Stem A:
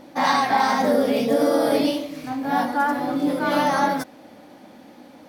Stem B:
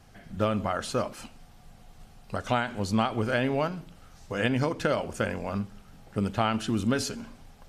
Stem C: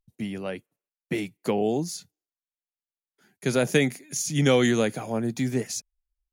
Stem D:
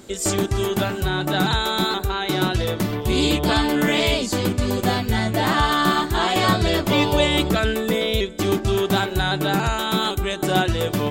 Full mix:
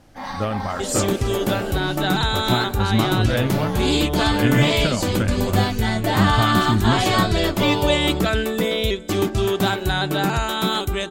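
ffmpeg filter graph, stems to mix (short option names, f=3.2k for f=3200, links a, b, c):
-filter_complex "[0:a]volume=-12dB[a];[1:a]asubboost=boost=5.5:cutoff=170,volume=1.5dB[b];[2:a]volume=-15.5dB[c];[3:a]adelay=700,volume=0dB[d];[a][b][c][d]amix=inputs=4:normalize=0"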